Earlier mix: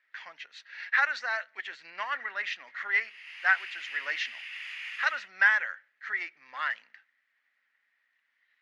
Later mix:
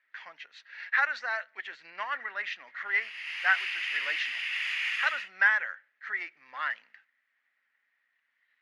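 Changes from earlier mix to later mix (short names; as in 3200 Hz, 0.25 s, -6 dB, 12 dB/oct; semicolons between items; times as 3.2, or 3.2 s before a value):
speech: add high shelf 4500 Hz -8 dB; background +8.5 dB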